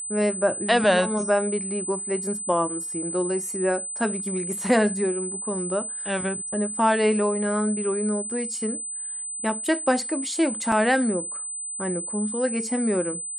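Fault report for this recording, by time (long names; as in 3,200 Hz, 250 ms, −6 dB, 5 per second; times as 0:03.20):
whistle 8,100 Hz −30 dBFS
0:10.72: drop-out 3.1 ms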